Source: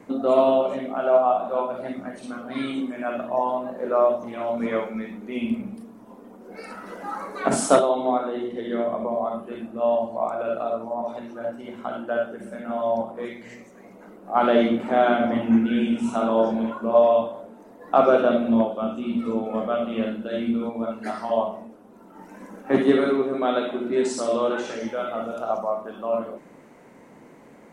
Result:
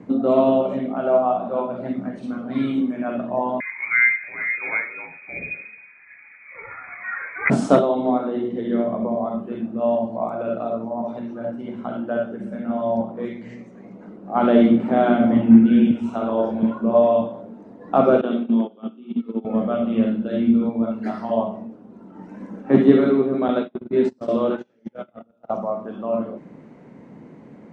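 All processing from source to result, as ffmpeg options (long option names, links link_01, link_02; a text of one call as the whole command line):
ffmpeg -i in.wav -filter_complex "[0:a]asettb=1/sr,asplit=3[link_01][link_02][link_03];[link_01]atrim=end=3.604[link_04];[link_02]atrim=start=3.6:end=7.5,asetpts=PTS-STARTPTS,afade=type=in:duration=0.004:curve=qsin,afade=type=out:start_time=3.896:duration=0.004:curve=qsin,highpass=frequency=400:poles=1,equalizer=frequency=770:width_type=o:width=2.5:gain=6.5,lowpass=frequency=2300:width_type=q:width=0.5098,lowpass=frequency=2300:width_type=q:width=0.6013,lowpass=frequency=2300:width_type=q:width=0.9,lowpass=frequency=2300:width_type=q:width=2.563,afreqshift=-2700[link_05];[link_03]atrim=start=7.496[link_06];[link_04][link_05]acrossfade=duration=0.004:curve1=hsin:curve2=qsin[link_07];[link_07][link_06]acrossfade=duration=0.004:curve1=qsin:curve2=hsin,asettb=1/sr,asplit=3[link_08][link_09][link_10];[link_08]atrim=end=15.914[link_11];[link_09]atrim=start=15.91:end=16.63,asetpts=PTS-STARTPTS,afade=type=in:duration=0.004:curve=qsin,afade=type=out:start_time=0.716:duration=0.004:curve=qsin,bass=frequency=250:gain=-12,treble=frequency=4000:gain=-2,tremolo=f=130:d=0.333[link_12];[link_10]atrim=start=16.626[link_13];[link_11][link_12]acrossfade=duration=0.004:curve1=hsin:curve2=qsin[link_14];[link_14][link_13]acrossfade=duration=0.004:curve1=qsin:curve2=hsin,asettb=1/sr,asplit=3[link_15][link_16][link_17];[link_15]atrim=end=18.214[link_18];[link_16]atrim=start=18.21:end=19.45,asetpts=PTS-STARTPTS,afade=type=in:duration=0.004:curve=qsin,afade=type=out:start_time=1.236:duration=0.004:curve=qsin,agate=range=-18dB:threshold=-24dB:ratio=16:release=100:detection=peak,acompressor=threshold=-28dB:ratio=1.5:attack=3.2:release=140:knee=1:detection=peak,highpass=frequency=210:width=0.5412,highpass=frequency=210:width=1.3066,equalizer=frequency=410:width_type=q:width=4:gain=5,equalizer=frequency=600:width_type=q:width=4:gain=-9,equalizer=frequency=3200:width_type=q:width=4:gain=9,lowpass=frequency=4900:width=0.5412,lowpass=frequency=4900:width=1.3066[link_19];[link_17]atrim=start=19.446[link_20];[link_18][link_19]acrossfade=duration=0.004:curve1=hsin:curve2=qsin[link_21];[link_21][link_20]acrossfade=duration=0.004:curve1=qsin:curve2=hsin,asettb=1/sr,asplit=3[link_22][link_23][link_24];[link_22]atrim=end=23.484[link_25];[link_23]atrim=start=23.48:end=25.54,asetpts=PTS-STARTPTS,afade=type=in:duration=0.004:curve=qsin,afade=type=out:start_time=2.056:duration=0.004:curve=qsin,acrossover=split=4000[link_26][link_27];[link_27]acompressor=threshold=-44dB:ratio=4:attack=1:release=60[link_28];[link_26][link_28]amix=inputs=2:normalize=0,agate=range=-34dB:threshold=-26dB:ratio=16:release=100:detection=peak[link_29];[link_24]atrim=start=25.536[link_30];[link_25][link_29]acrossfade=duration=0.004:curve1=hsin:curve2=qsin[link_31];[link_31][link_30]acrossfade=duration=0.004:curve1=qsin:curve2=hsin,lowpass=4900,equalizer=frequency=150:width_type=o:width=2.6:gain=13.5,volume=-3dB" out.wav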